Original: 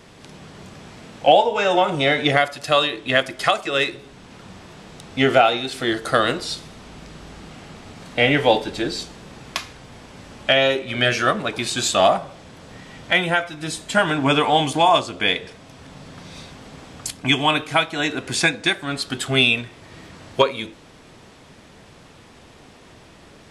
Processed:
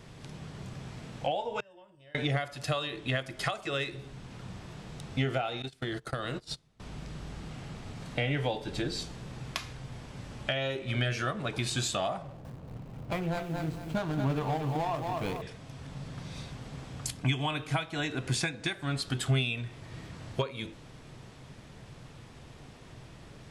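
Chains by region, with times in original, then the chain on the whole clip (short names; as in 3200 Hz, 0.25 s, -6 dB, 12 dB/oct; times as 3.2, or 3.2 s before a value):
1.6–2.15 ripple EQ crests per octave 1.3, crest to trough 11 dB + flipped gate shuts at -14 dBFS, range -34 dB
5.62–6.8 gate -28 dBFS, range -25 dB + compressor 5:1, threshold -25 dBFS
12.22–15.42 median filter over 25 samples + high shelf 7000 Hz -6 dB + lo-fi delay 0.228 s, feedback 35%, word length 7-bit, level -7 dB
whole clip: low shelf 76 Hz +10.5 dB; compressor 5:1, threshold -23 dBFS; bell 130 Hz +9.5 dB 0.5 oct; gain -6.5 dB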